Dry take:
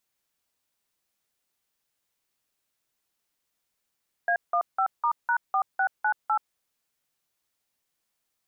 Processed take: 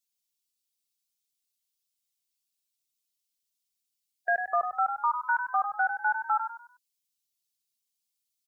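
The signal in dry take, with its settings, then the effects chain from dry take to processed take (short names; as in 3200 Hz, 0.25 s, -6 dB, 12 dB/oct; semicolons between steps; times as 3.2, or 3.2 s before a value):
DTMF "A15*#4698", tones 80 ms, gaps 0.172 s, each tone -23.5 dBFS
per-bin expansion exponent 1.5; on a send: frequency-shifting echo 98 ms, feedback 33%, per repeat +33 Hz, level -7.5 dB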